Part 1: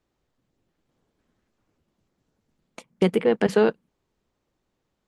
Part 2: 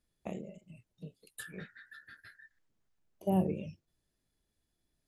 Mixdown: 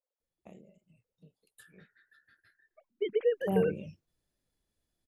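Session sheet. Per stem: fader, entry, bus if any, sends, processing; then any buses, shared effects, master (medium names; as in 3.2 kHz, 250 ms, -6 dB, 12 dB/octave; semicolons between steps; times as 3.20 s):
-9.5 dB, 0.00 s, no send, formants replaced by sine waves; level-controlled noise filter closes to 910 Hz, open at -19 dBFS; high-pass 190 Hz
3.03 s -12 dB -> 3.24 s -1.5 dB, 0.20 s, no send, none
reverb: none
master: none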